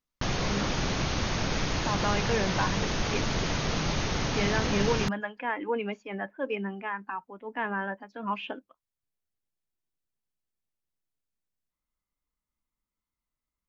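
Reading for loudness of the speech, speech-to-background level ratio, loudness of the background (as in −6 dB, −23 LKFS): −33.0 LKFS, −3.5 dB, −29.5 LKFS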